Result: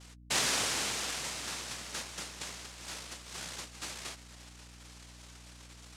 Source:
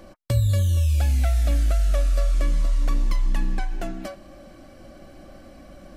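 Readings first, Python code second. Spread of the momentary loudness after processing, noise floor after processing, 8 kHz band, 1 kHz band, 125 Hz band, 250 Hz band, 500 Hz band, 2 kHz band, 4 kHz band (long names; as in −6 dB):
22 LU, −53 dBFS, +6.0 dB, −3.0 dB, −29.0 dB, −13.0 dB, −11.5 dB, +2.0 dB, +6.0 dB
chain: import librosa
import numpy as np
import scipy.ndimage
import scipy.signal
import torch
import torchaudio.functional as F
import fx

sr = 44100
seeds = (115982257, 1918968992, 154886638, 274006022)

y = fx.noise_vocoder(x, sr, seeds[0], bands=1)
y = fx.add_hum(y, sr, base_hz=60, snr_db=15)
y = y * librosa.db_to_amplitude(-8.5)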